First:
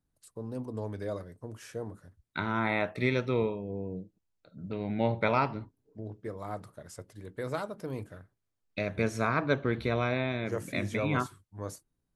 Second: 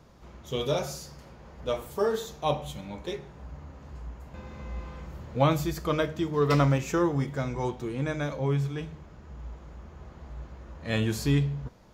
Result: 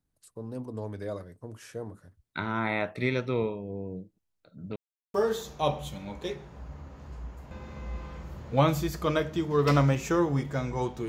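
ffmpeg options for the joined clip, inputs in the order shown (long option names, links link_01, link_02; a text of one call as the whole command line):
ffmpeg -i cue0.wav -i cue1.wav -filter_complex "[0:a]apad=whole_dur=11.08,atrim=end=11.08,asplit=2[link_01][link_02];[link_01]atrim=end=4.76,asetpts=PTS-STARTPTS,afade=type=out:start_time=4.756:duration=0.004:curve=hsin[link_03];[link_02]atrim=start=4.76:end=5.14,asetpts=PTS-STARTPTS,volume=0[link_04];[1:a]atrim=start=1.97:end=7.91,asetpts=PTS-STARTPTS,afade=type=in:duration=0.004:curve=hsin[link_05];[link_03][link_04][link_05]concat=n=3:v=0:a=1" out.wav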